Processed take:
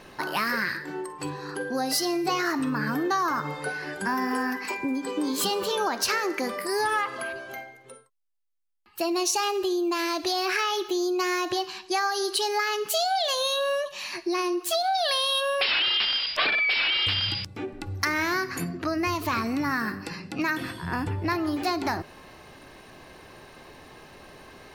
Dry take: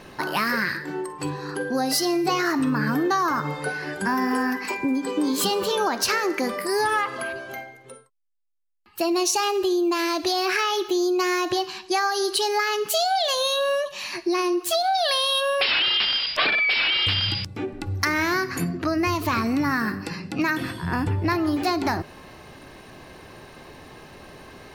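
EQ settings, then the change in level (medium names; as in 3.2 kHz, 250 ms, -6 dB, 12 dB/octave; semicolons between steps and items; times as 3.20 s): peaking EQ 120 Hz -3.5 dB 3 oct; -2.5 dB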